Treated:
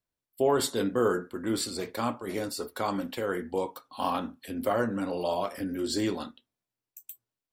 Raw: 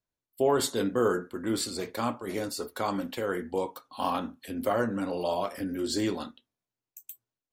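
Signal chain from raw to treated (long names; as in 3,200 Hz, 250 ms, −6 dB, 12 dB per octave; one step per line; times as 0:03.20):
notch filter 6,500 Hz, Q 15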